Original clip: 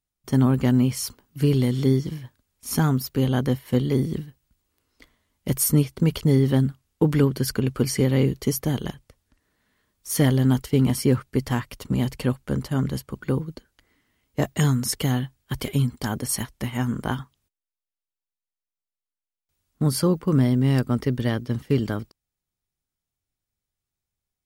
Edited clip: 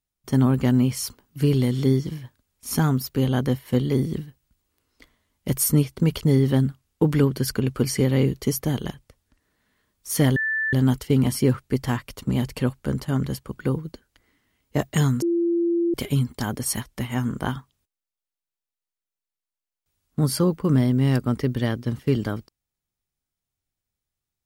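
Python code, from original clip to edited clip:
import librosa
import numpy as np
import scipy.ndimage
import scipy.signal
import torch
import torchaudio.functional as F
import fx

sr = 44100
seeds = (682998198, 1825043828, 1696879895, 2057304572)

y = fx.edit(x, sr, fx.insert_tone(at_s=10.36, length_s=0.37, hz=1760.0, db=-21.5),
    fx.bleep(start_s=14.85, length_s=0.72, hz=341.0, db=-18.5), tone=tone)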